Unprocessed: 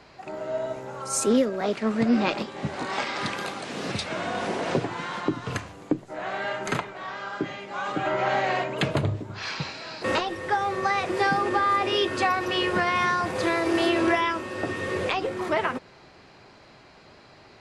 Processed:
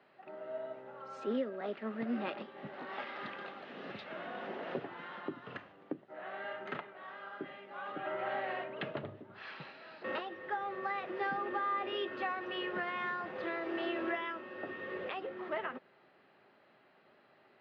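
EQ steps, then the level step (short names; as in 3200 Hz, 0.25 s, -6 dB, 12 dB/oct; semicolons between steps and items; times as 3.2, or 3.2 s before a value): speaker cabinet 310–2700 Hz, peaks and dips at 310 Hz -6 dB, 470 Hz -6 dB, 710 Hz -5 dB, 1000 Hz -9 dB, 1500 Hz -4 dB, 2300 Hz -9 dB; -7.0 dB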